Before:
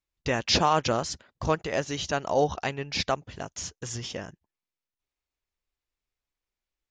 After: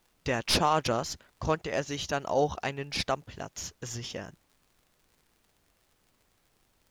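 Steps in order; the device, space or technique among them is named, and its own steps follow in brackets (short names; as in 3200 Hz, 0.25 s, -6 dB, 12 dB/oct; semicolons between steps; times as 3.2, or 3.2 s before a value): record under a worn stylus (tracing distortion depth 0.034 ms; crackle 77/s -49 dBFS; pink noise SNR 37 dB); gain -2.5 dB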